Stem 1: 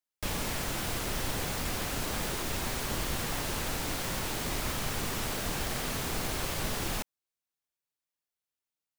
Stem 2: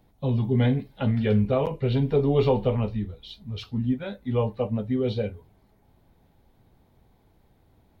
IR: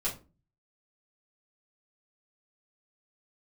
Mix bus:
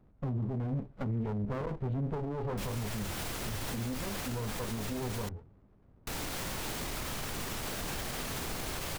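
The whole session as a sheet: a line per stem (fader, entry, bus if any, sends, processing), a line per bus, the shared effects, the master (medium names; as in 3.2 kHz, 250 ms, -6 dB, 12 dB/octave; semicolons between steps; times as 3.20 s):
-0.5 dB, 2.35 s, muted 5.29–6.07 s, no send, none
0.0 dB, 0.00 s, no send, saturation -17 dBFS, distortion -16 dB; low-pass 1.1 kHz 12 dB/octave; sliding maximum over 33 samples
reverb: none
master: peak limiter -27.5 dBFS, peak gain reduction 12.5 dB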